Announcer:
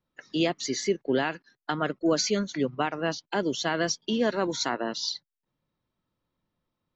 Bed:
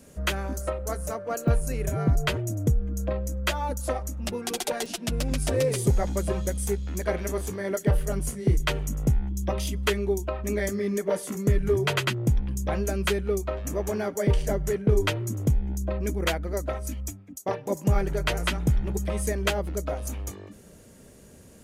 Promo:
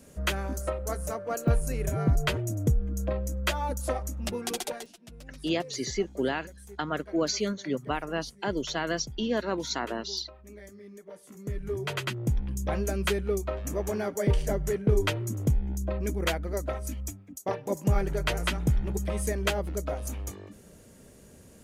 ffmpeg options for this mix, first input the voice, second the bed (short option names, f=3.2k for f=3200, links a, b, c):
-filter_complex "[0:a]adelay=5100,volume=-3dB[a];[1:a]volume=16.5dB,afade=t=out:st=4.52:d=0.4:silence=0.11885,afade=t=in:st=11.2:d=1.49:silence=0.125893[b];[a][b]amix=inputs=2:normalize=0"